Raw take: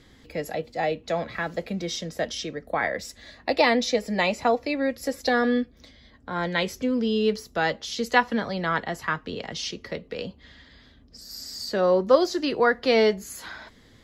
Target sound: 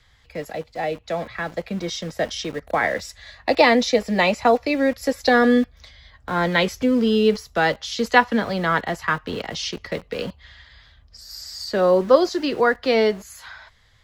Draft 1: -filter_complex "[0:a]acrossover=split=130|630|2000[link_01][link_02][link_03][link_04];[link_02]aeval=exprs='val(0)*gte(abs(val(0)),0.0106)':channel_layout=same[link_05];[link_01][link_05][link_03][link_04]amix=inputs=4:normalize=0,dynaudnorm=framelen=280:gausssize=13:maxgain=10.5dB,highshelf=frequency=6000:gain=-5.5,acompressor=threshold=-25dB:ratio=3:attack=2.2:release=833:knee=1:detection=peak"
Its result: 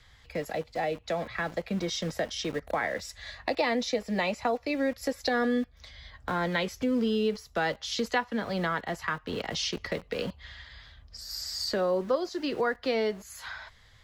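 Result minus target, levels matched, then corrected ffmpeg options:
downward compressor: peak gain reduction +14.5 dB
-filter_complex "[0:a]acrossover=split=130|630|2000[link_01][link_02][link_03][link_04];[link_02]aeval=exprs='val(0)*gte(abs(val(0)),0.0106)':channel_layout=same[link_05];[link_01][link_05][link_03][link_04]amix=inputs=4:normalize=0,dynaudnorm=framelen=280:gausssize=13:maxgain=10.5dB,highshelf=frequency=6000:gain=-5.5"

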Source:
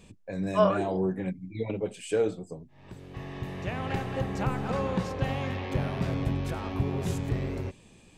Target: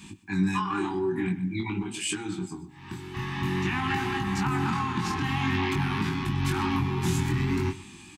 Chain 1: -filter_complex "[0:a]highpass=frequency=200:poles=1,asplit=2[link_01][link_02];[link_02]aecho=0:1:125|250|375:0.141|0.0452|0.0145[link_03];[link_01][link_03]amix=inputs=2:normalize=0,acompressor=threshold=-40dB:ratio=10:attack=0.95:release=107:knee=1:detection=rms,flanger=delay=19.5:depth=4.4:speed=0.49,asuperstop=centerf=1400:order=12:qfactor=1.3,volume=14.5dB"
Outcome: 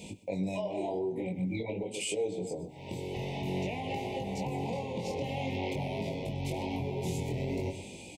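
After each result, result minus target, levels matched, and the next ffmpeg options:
downward compressor: peak gain reduction +8.5 dB; 500 Hz band +7.5 dB
-filter_complex "[0:a]highpass=frequency=200:poles=1,asplit=2[link_01][link_02];[link_02]aecho=0:1:125|250|375:0.141|0.0452|0.0145[link_03];[link_01][link_03]amix=inputs=2:normalize=0,acompressor=threshold=-30.5dB:ratio=10:attack=0.95:release=107:knee=1:detection=rms,flanger=delay=19.5:depth=4.4:speed=0.49,asuperstop=centerf=1400:order=12:qfactor=1.3,volume=14.5dB"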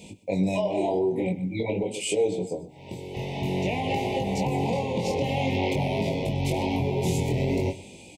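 500 Hz band +7.5 dB
-filter_complex "[0:a]highpass=frequency=200:poles=1,asplit=2[link_01][link_02];[link_02]aecho=0:1:125|250|375:0.141|0.0452|0.0145[link_03];[link_01][link_03]amix=inputs=2:normalize=0,acompressor=threshold=-30.5dB:ratio=10:attack=0.95:release=107:knee=1:detection=rms,flanger=delay=19.5:depth=4.4:speed=0.49,asuperstop=centerf=550:order=12:qfactor=1.3,volume=14.5dB"

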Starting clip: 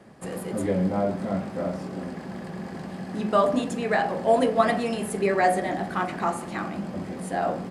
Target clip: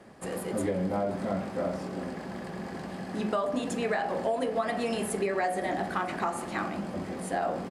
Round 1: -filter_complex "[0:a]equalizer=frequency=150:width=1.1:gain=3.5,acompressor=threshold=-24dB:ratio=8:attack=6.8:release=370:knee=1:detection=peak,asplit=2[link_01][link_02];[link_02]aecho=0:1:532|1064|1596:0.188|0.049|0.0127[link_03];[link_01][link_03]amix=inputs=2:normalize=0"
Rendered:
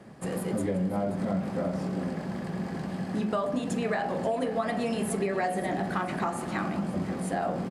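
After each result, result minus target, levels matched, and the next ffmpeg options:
echo-to-direct +9.5 dB; 125 Hz band +4.5 dB
-filter_complex "[0:a]equalizer=frequency=150:width=1.1:gain=3.5,acompressor=threshold=-24dB:ratio=8:attack=6.8:release=370:knee=1:detection=peak,asplit=2[link_01][link_02];[link_02]aecho=0:1:532|1064:0.0631|0.0164[link_03];[link_01][link_03]amix=inputs=2:normalize=0"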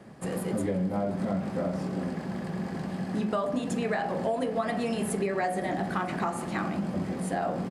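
125 Hz band +4.5 dB
-filter_complex "[0:a]equalizer=frequency=150:width=1.1:gain=-5,acompressor=threshold=-24dB:ratio=8:attack=6.8:release=370:knee=1:detection=peak,asplit=2[link_01][link_02];[link_02]aecho=0:1:532|1064:0.0631|0.0164[link_03];[link_01][link_03]amix=inputs=2:normalize=0"

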